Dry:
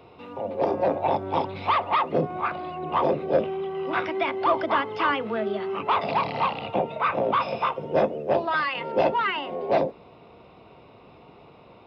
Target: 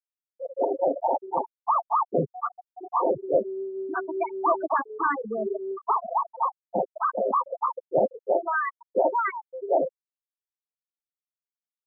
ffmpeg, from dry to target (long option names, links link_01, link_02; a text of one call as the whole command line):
ffmpeg -i in.wav -af "lowpass=frequency=2400:width=0.5412,lowpass=frequency=2400:width=1.3066,afftfilt=real='re*gte(hypot(re,im),0.224)':imag='im*gte(hypot(re,im),0.224)':win_size=1024:overlap=0.75" out.wav